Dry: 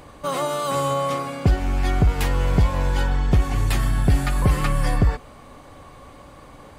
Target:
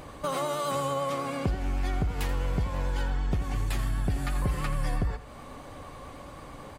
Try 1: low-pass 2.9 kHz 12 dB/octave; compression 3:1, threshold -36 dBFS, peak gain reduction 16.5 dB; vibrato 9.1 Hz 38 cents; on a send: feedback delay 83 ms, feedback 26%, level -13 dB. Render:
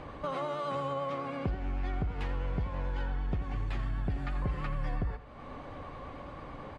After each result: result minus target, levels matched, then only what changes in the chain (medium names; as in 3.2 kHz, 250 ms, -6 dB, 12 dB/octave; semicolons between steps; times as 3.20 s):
compression: peak gain reduction +4.5 dB; 4 kHz band -3.5 dB
change: compression 3:1, threshold -29 dBFS, peak gain reduction 12 dB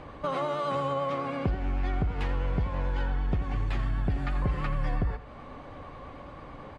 4 kHz band -4.5 dB
remove: low-pass 2.9 kHz 12 dB/octave